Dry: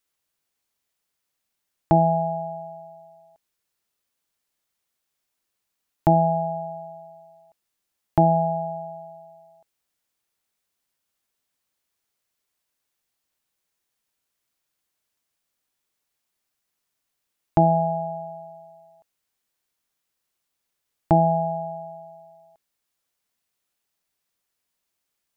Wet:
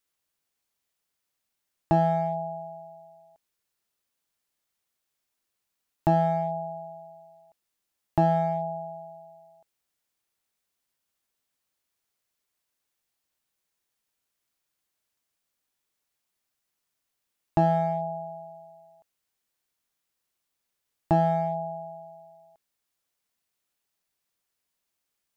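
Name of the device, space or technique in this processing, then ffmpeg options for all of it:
parallel distortion: -filter_complex "[0:a]asplit=2[a][b];[b]asoftclip=type=hard:threshold=-22dB,volume=-5dB[c];[a][c]amix=inputs=2:normalize=0,volume=-6dB"

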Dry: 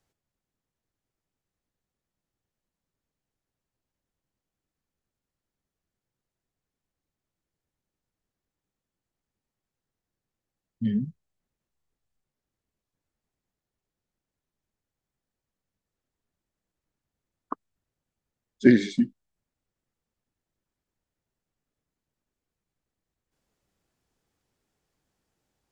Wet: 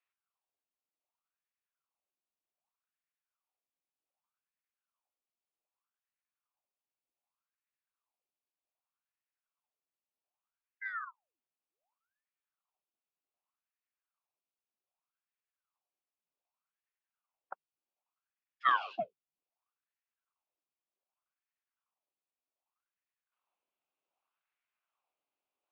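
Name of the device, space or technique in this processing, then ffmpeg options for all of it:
voice changer toy: -af "aeval=exprs='val(0)*sin(2*PI*970*n/s+970*0.9/0.65*sin(2*PI*0.65*n/s))':c=same,highpass=460,equalizer=f=460:t=q:w=4:g=-5,equalizer=f=740:t=q:w=4:g=3,equalizer=f=1.1k:t=q:w=4:g=3,equalizer=f=1.8k:t=q:w=4:g=-8,equalizer=f=2.6k:t=q:w=4:g=7,lowpass=f=3.6k:w=0.5412,lowpass=f=3.6k:w=1.3066,volume=-8.5dB"

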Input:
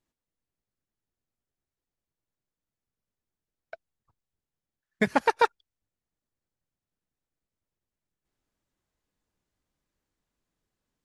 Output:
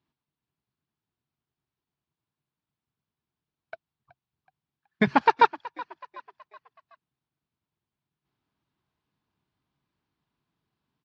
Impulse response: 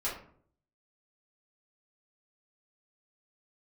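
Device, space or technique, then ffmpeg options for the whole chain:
frequency-shifting delay pedal into a guitar cabinet: -filter_complex "[0:a]asplit=5[a][b][c][d][e];[b]adelay=374,afreqshift=51,volume=-19.5dB[f];[c]adelay=748,afreqshift=102,volume=-26.2dB[g];[d]adelay=1122,afreqshift=153,volume=-33dB[h];[e]adelay=1496,afreqshift=204,volume=-39.7dB[i];[a][f][g][h][i]amix=inputs=5:normalize=0,highpass=82,equalizer=f=140:t=q:w=4:g=7,equalizer=f=530:t=q:w=4:g=-10,equalizer=f=1k:t=q:w=4:g=4,equalizer=f=1.9k:t=q:w=4:g=-4,lowpass=f=4.4k:w=0.5412,lowpass=f=4.4k:w=1.3066,volume=3.5dB"

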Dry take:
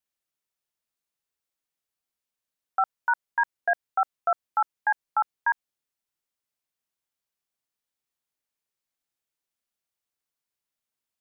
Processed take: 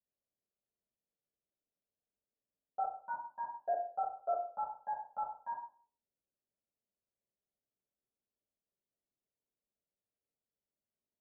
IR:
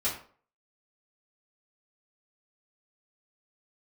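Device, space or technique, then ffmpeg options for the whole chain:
next room: -filter_complex "[0:a]lowpass=f=570:w=0.5412,lowpass=f=570:w=1.3066,lowshelf=f=490:g=-7.5[a];[1:a]atrim=start_sample=2205[b];[a][b]afir=irnorm=-1:irlink=0"

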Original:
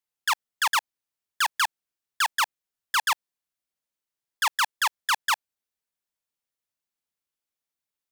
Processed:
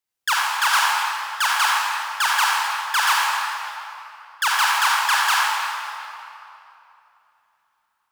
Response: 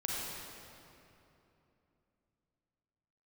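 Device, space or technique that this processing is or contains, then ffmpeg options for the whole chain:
stairwell: -filter_complex "[1:a]atrim=start_sample=2205[a];[0:a][a]afir=irnorm=-1:irlink=0,volume=3.5dB"

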